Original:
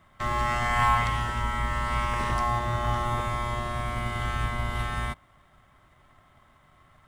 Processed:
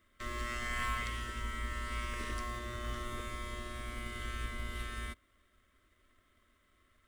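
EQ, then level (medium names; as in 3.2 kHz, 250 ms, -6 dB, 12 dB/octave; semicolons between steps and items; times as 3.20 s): treble shelf 7.6 kHz +4 dB; static phaser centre 340 Hz, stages 4; -7.0 dB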